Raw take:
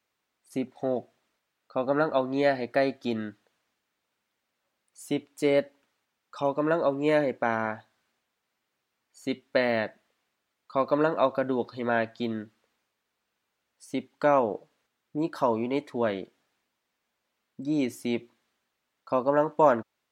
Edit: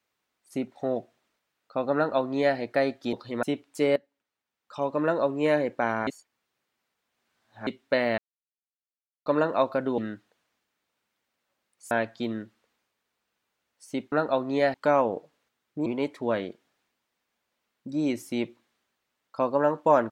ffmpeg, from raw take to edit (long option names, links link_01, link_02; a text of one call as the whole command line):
ffmpeg -i in.wav -filter_complex "[0:a]asplit=13[link_01][link_02][link_03][link_04][link_05][link_06][link_07][link_08][link_09][link_10][link_11][link_12][link_13];[link_01]atrim=end=3.132[link_14];[link_02]atrim=start=11.608:end=11.912[link_15];[link_03]atrim=start=5.058:end=5.59,asetpts=PTS-STARTPTS,afade=type=out:start_time=0.528:duration=0.004:curve=hsin:silence=0.158489[link_16];[link_04]atrim=start=5.59:end=7.702,asetpts=PTS-STARTPTS,afade=type=in:duration=0.99:curve=qua:silence=0.158489[link_17];[link_05]atrim=start=7.698:end=9.302,asetpts=PTS-STARTPTS,areverse[link_18];[link_06]atrim=start=9.298:end=9.81,asetpts=PTS-STARTPTS,afade=type=out:start_time=0.508:duration=0.004:curve=hsin[link_19];[link_07]atrim=start=9.81:end=10.89,asetpts=PTS-STARTPTS,volume=0[link_20];[link_08]atrim=start=10.89:end=11.612,asetpts=PTS-STARTPTS,afade=type=in:duration=0.004:curve=hsin[link_21];[link_09]atrim=start=3.128:end=5.062[link_22];[link_10]atrim=start=11.908:end=14.122[link_23];[link_11]atrim=start=1.948:end=2.572[link_24];[link_12]atrim=start=14.118:end=15.242[link_25];[link_13]atrim=start=15.588[link_26];[link_14][link_15]acrossfade=duration=0.004:curve1=hsin:curve2=hsin[link_27];[link_16][link_17]concat=n=2:v=0:a=1[link_28];[link_27][link_28]acrossfade=duration=0.004:curve1=hsin:curve2=hsin[link_29];[link_29][link_18]acrossfade=duration=0.004:curve1=hsin:curve2=hsin[link_30];[link_19][link_20][link_21]concat=n=3:v=0:a=1[link_31];[link_30][link_31]acrossfade=duration=0.004:curve1=hsin:curve2=hsin[link_32];[link_32][link_22]acrossfade=duration=0.004:curve1=hsin:curve2=hsin[link_33];[link_33][link_23]acrossfade=duration=0.004:curve1=hsin:curve2=hsin[link_34];[link_34][link_24]acrossfade=duration=0.004:curve1=hsin:curve2=hsin[link_35];[link_35][link_25]acrossfade=duration=0.004:curve1=hsin:curve2=hsin[link_36];[link_36][link_26]acrossfade=duration=0.004:curve1=hsin:curve2=hsin" out.wav